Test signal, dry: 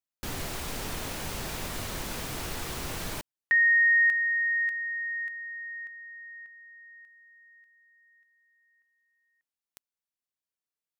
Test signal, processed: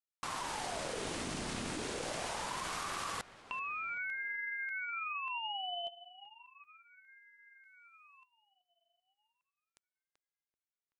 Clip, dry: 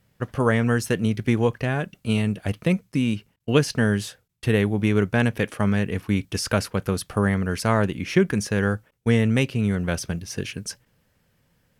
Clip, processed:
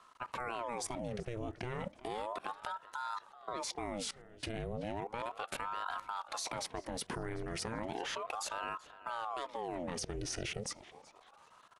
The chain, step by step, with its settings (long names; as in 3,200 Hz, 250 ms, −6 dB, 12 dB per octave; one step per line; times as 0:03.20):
downward compressor 5 to 1, threshold −28 dBFS
downsampling to 22,050 Hz
output level in coarse steps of 22 dB
on a send: tape delay 383 ms, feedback 57%, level −15 dB, low-pass 2,900 Hz
on the sum: ring modulator whose carrier an LFO sweeps 690 Hz, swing 70%, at 0.34 Hz
level +7.5 dB